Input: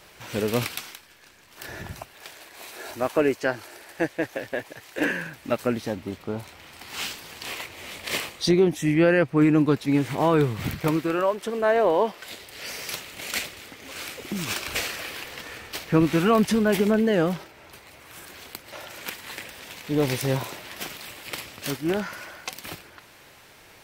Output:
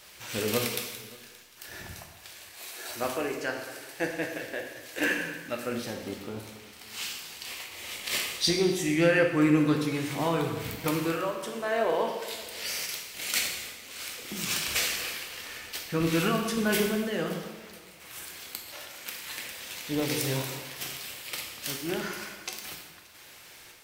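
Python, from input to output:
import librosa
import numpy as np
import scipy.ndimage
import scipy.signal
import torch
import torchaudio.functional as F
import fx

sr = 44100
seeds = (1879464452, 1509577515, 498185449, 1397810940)

p1 = fx.high_shelf(x, sr, hz=2000.0, db=10.5)
p2 = fx.dmg_noise_colour(p1, sr, seeds[0], colour='white', level_db=-65.0)
p3 = fx.tremolo_random(p2, sr, seeds[1], hz=3.5, depth_pct=55)
p4 = p3 + fx.echo_single(p3, sr, ms=576, db=-22.5, dry=0)
p5 = fx.rev_plate(p4, sr, seeds[2], rt60_s=1.2, hf_ratio=0.9, predelay_ms=0, drr_db=1.5)
y = p5 * librosa.db_to_amplitude(-7.0)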